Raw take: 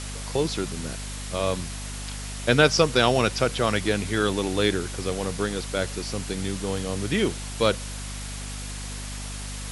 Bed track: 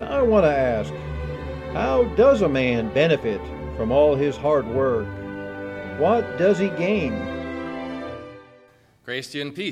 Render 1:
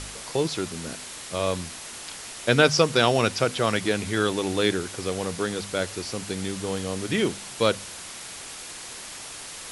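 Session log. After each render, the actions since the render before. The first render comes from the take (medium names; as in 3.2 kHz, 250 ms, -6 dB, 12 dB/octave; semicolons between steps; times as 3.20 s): de-hum 50 Hz, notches 5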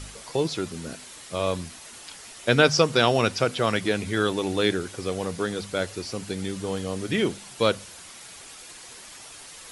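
noise reduction 7 dB, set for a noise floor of -39 dBFS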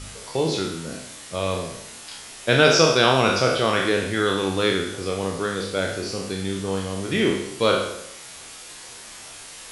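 spectral sustain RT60 0.84 s; on a send: flutter echo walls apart 5.3 m, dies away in 0.21 s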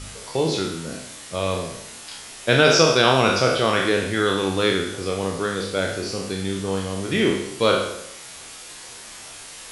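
trim +1 dB; peak limiter -2 dBFS, peak gain reduction 1.5 dB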